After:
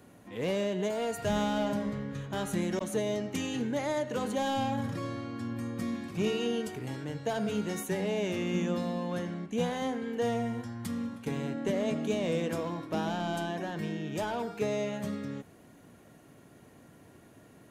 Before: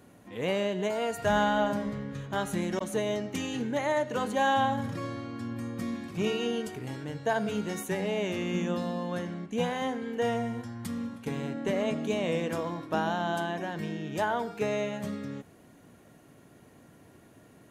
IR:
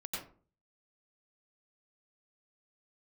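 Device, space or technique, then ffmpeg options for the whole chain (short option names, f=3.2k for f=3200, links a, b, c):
one-band saturation: -filter_complex "[0:a]acrossover=split=550|3400[a][b][c];[b]asoftclip=type=tanh:threshold=-35.5dB[d];[a][d][c]amix=inputs=3:normalize=0"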